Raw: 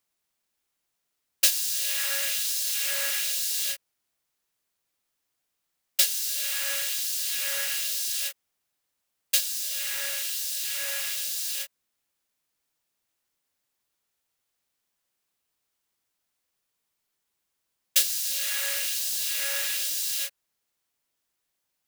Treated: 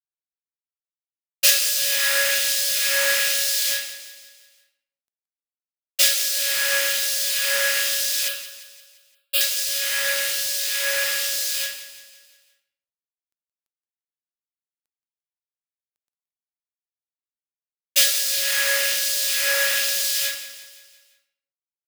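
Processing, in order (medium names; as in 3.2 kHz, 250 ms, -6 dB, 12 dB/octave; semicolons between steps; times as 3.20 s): treble shelf 7.1 kHz -4 dB; simulated room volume 150 m³, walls mixed, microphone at 2.7 m; bit crusher 10-bit; 8.28–9.41 s: static phaser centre 1.3 kHz, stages 8; on a send: feedback delay 173 ms, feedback 52%, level -13.5 dB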